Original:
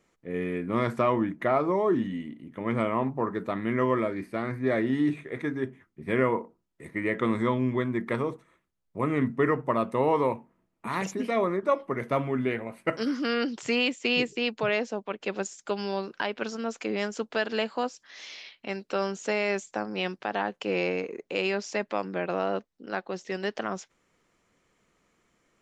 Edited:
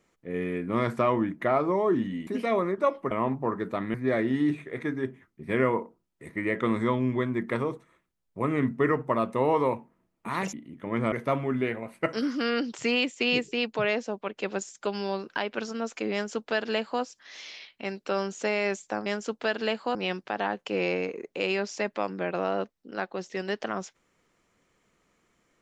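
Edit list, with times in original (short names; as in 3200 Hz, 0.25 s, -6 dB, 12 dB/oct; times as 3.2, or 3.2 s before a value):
2.27–2.86 swap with 11.12–11.96
3.69–4.53 cut
16.97–17.86 copy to 19.9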